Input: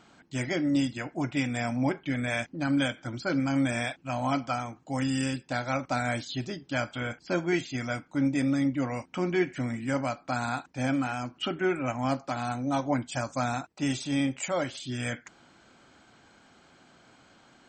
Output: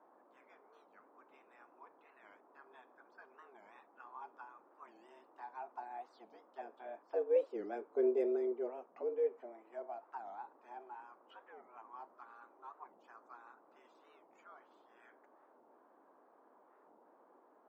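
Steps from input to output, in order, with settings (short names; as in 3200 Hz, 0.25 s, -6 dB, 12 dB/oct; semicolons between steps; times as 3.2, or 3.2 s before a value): Doppler pass-by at 8.01, 8 m/s, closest 2.7 m; harmonic-percussive split percussive +3 dB; auto-wah 380–1500 Hz, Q 4.8, down, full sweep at -36 dBFS; frequency shift +110 Hz; band noise 260–1100 Hz -72 dBFS; record warp 45 rpm, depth 250 cents; gain +5.5 dB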